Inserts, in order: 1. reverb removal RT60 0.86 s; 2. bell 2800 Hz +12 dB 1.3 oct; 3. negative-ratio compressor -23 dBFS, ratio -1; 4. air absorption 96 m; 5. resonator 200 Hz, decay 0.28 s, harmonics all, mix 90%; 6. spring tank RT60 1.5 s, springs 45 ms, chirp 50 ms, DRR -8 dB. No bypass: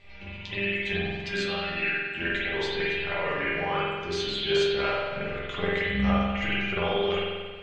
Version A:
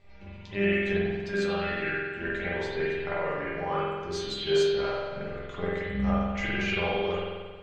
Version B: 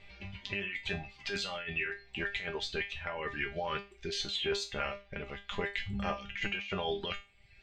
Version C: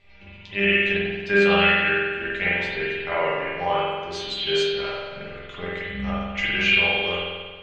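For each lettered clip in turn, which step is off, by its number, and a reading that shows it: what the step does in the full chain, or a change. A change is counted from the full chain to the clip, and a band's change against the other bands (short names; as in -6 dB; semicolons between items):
2, 4 kHz band -5.0 dB; 6, crest factor change +3.5 dB; 3, crest factor change +3.5 dB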